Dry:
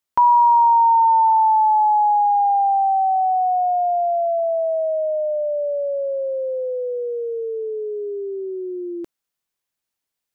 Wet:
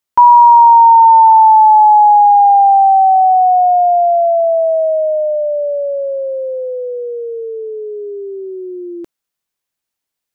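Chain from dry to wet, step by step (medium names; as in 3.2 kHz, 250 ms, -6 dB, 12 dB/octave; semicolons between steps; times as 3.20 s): dynamic bell 800 Hz, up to +7 dB, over -29 dBFS, Q 1.2; trim +2.5 dB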